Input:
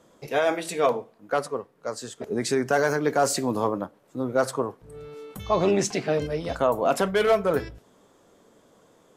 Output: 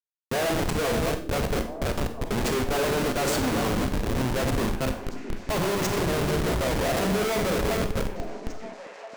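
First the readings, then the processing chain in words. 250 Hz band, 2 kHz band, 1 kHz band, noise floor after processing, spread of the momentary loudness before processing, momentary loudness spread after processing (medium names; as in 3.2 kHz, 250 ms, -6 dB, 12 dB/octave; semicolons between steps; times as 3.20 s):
+2.0 dB, +1.0 dB, -2.0 dB, -43 dBFS, 13 LU, 11 LU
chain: backward echo that repeats 243 ms, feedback 63%, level -9 dB; Schmitt trigger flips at -27 dBFS; repeats whose band climbs or falls 664 ms, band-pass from 290 Hz, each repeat 1.4 oct, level -8 dB; Schroeder reverb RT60 0.43 s, combs from 31 ms, DRR 7.5 dB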